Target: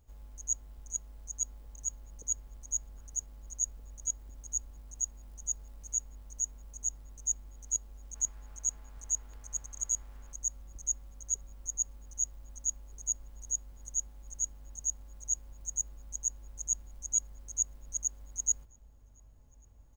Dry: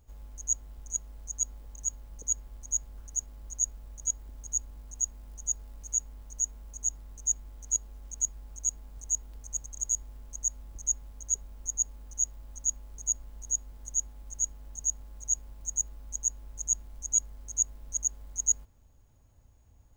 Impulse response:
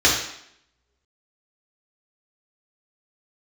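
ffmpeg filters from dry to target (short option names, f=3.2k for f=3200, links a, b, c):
-filter_complex "[0:a]asettb=1/sr,asplit=3[a][b][c];[a]atrim=end=8.154[d];[b]atrim=start=8.15:end=10.33,asetpts=PTS-STARTPTS,afade=t=in:d=0.004:c=qsin,afade=t=out:st=2.176:d=0.004:c=qsin,equalizer=f=1.5k:w=0.63:g=9.5[e];[c]atrim=start=10.326[f];[d][e]acrossfade=d=0.004:c1=hsin:c2=qsin[g];[g][f]acrossfade=d=0.004:c1=qsin:c2=hsin,asplit=2[h][i];[i]adelay=1574,volume=-10dB,highshelf=f=4k:g=-35.4[j];[h][j]amix=inputs=2:normalize=0,volume=-3.5dB"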